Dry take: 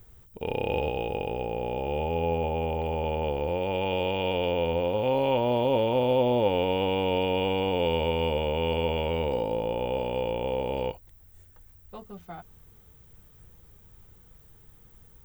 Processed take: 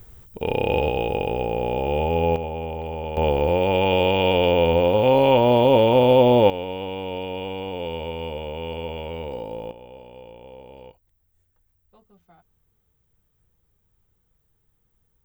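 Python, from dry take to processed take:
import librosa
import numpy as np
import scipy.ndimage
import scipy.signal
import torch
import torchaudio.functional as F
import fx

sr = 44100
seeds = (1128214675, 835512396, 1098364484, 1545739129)

y = fx.gain(x, sr, db=fx.steps((0.0, 6.5), (2.36, -1.0), (3.17, 8.5), (6.5, -4.0), (9.71, -14.0)))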